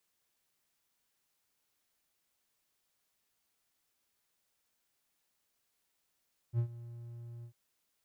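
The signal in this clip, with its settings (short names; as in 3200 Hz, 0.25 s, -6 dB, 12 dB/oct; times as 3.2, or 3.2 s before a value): ADSR triangle 118 Hz, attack 56 ms, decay 87 ms, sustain -18 dB, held 0.91 s, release 86 ms -24 dBFS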